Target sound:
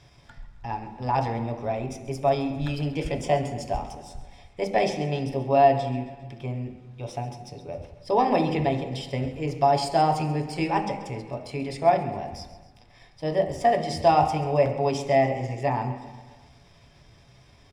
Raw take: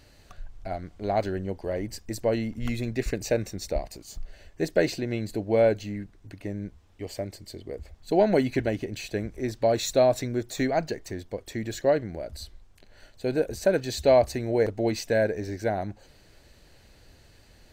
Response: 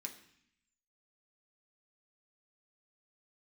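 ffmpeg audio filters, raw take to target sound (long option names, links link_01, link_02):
-filter_complex "[0:a]aemphasis=mode=reproduction:type=75fm,asetrate=53981,aresample=44100,atempo=0.816958,aecho=1:1:134|268|402|536|670:0.15|0.0868|0.0503|0.0292|0.0169,asplit=2[link_01][link_02];[1:a]atrim=start_sample=2205,asetrate=29106,aresample=44100[link_03];[link_02][link_03]afir=irnorm=-1:irlink=0,volume=6.5dB[link_04];[link_01][link_04]amix=inputs=2:normalize=0,volume=-5.5dB"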